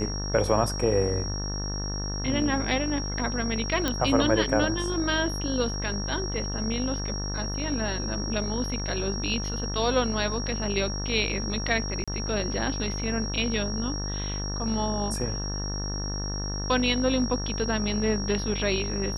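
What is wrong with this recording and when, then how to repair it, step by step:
mains buzz 50 Hz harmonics 37 −32 dBFS
whistle 5,600 Hz −34 dBFS
0:03.88: click −11 dBFS
0:12.04–0:12.08: drop-out 36 ms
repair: click removal
notch filter 5,600 Hz, Q 30
hum removal 50 Hz, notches 37
repair the gap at 0:12.04, 36 ms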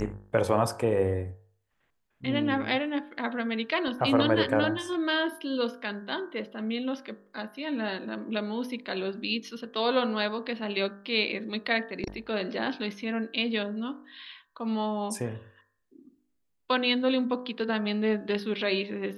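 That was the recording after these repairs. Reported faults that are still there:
none of them is left

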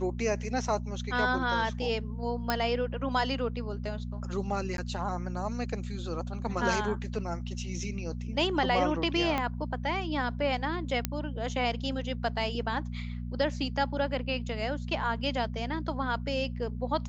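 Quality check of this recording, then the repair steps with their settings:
mains hum 60 Hz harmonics 4 −36 dBFS
0:02.50: click −12 dBFS
0:04.77–0:04.78: drop-out 12 ms
0:09.38: click −16 dBFS
0:11.05: click −11 dBFS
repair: click removal
hum removal 60 Hz, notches 4
repair the gap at 0:04.77, 12 ms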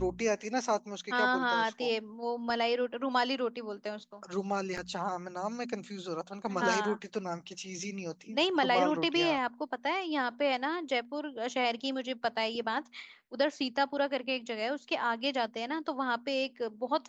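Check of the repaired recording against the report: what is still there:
0:09.38: click

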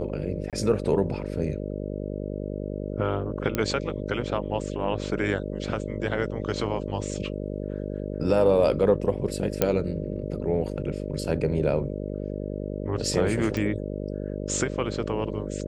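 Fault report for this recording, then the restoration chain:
mains buzz 50 Hz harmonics 12 −32 dBFS
0:00.50–0:00.53: drop-out 27 ms
0:03.55: click −11 dBFS
0:09.62: click −6 dBFS
0:13.57: click −17 dBFS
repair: click removal
hum removal 50 Hz, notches 12
repair the gap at 0:00.50, 27 ms

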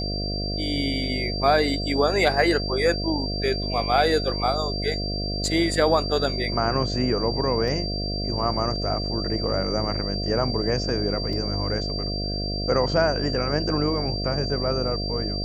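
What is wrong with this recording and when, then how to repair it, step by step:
mains buzz 50 Hz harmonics 14 −29 dBFS
whistle 4,700 Hz −30 dBFS
0:07.68: drop-out 2.7 ms
0:11.33: drop-out 2.3 ms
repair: notch filter 4,700 Hz, Q 30
hum removal 50 Hz, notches 14
repair the gap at 0:07.68, 2.7 ms
repair the gap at 0:11.33, 2.3 ms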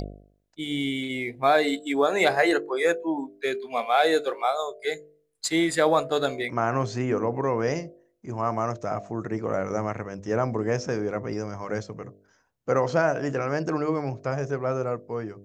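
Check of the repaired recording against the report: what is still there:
none of them is left

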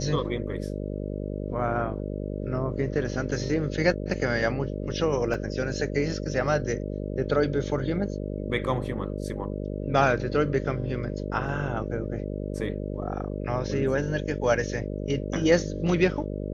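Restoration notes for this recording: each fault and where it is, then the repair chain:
mains buzz 50 Hz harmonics 12 −32 dBFS
0:05.34: drop-out 2.9 ms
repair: hum removal 50 Hz, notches 12
repair the gap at 0:05.34, 2.9 ms

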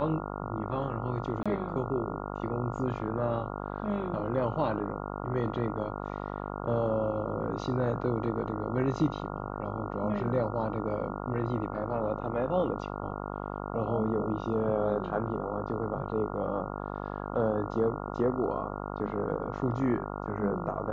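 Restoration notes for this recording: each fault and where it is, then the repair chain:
mains buzz 50 Hz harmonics 28 −37 dBFS
0:01.43–0:01.46: drop-out 26 ms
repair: hum removal 50 Hz, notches 28
repair the gap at 0:01.43, 26 ms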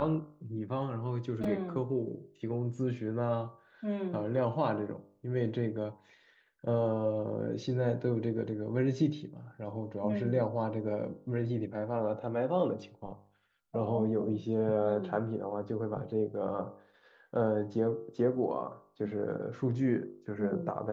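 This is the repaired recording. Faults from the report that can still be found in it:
none of them is left

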